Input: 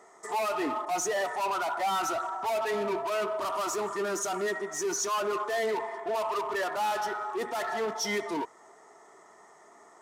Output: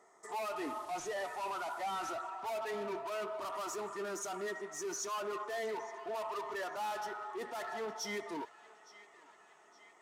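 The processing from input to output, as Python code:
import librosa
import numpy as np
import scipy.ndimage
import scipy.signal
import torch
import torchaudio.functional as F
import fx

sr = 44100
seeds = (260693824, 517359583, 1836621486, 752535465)

p1 = fx.delta_mod(x, sr, bps=64000, step_db=-41.0, at=(0.56, 2.11))
p2 = p1 + fx.echo_banded(p1, sr, ms=865, feedback_pct=69, hz=2300.0, wet_db=-15.5, dry=0)
y = p2 * 10.0 ** (-9.0 / 20.0)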